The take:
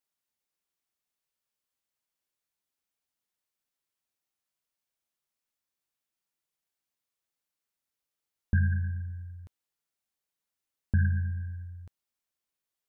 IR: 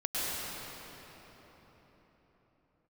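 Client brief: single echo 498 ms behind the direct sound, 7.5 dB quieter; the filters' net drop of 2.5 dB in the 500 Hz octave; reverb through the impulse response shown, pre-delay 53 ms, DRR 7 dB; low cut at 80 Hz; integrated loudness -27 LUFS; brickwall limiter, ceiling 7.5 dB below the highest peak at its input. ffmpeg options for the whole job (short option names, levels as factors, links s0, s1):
-filter_complex "[0:a]highpass=80,equalizer=f=500:t=o:g=-3.5,alimiter=limit=0.0631:level=0:latency=1,aecho=1:1:498:0.422,asplit=2[s0][s1];[1:a]atrim=start_sample=2205,adelay=53[s2];[s1][s2]afir=irnorm=-1:irlink=0,volume=0.168[s3];[s0][s3]amix=inputs=2:normalize=0,volume=2.66"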